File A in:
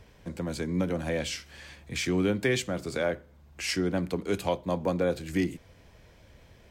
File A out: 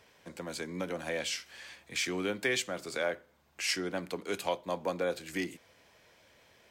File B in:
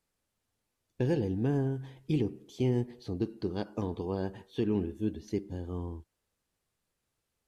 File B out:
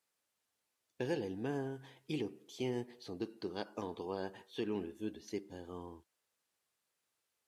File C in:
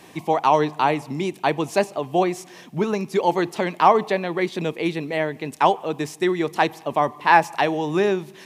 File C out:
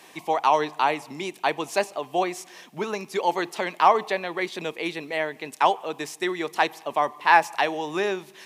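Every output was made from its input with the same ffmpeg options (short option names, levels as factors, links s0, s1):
-af "highpass=f=720:p=1"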